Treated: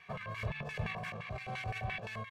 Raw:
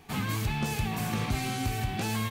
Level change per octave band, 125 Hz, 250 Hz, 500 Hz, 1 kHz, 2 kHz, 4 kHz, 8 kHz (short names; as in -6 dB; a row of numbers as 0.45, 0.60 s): -10.5, -16.0, -5.5, -8.5, -4.5, -12.0, -23.0 dB